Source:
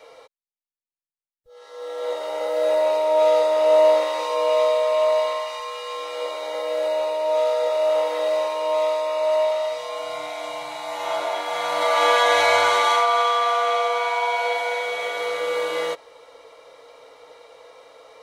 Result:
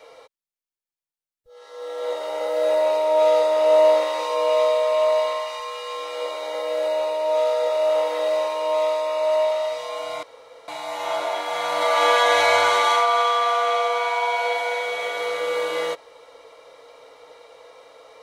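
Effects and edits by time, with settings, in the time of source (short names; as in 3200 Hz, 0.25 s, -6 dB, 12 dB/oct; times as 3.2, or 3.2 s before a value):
10.23–10.68 room tone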